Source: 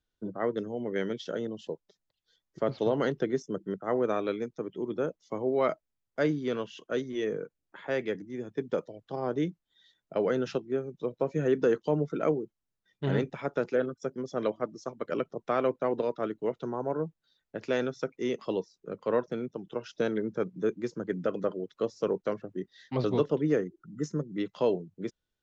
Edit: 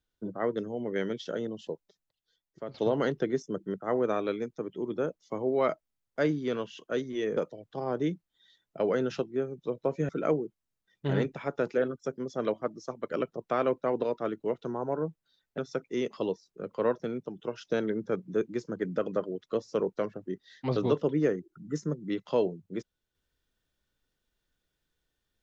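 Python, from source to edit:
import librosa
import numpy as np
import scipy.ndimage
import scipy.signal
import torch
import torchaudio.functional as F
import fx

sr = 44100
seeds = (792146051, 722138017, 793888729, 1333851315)

y = fx.edit(x, sr, fx.fade_out_to(start_s=1.71, length_s=1.03, floor_db=-12.5),
    fx.cut(start_s=7.37, length_s=1.36),
    fx.cut(start_s=11.45, length_s=0.62),
    fx.cut(start_s=17.56, length_s=0.3), tone=tone)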